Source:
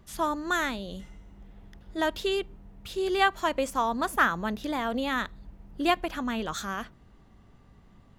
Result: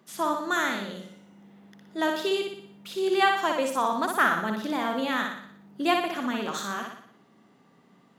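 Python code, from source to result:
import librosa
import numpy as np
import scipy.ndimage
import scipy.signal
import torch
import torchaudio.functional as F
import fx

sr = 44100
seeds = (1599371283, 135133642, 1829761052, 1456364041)

p1 = scipy.signal.sosfilt(scipy.signal.butter(4, 180.0, 'highpass', fs=sr, output='sos'), x)
y = p1 + fx.echo_feedback(p1, sr, ms=60, feedback_pct=52, wet_db=-4.0, dry=0)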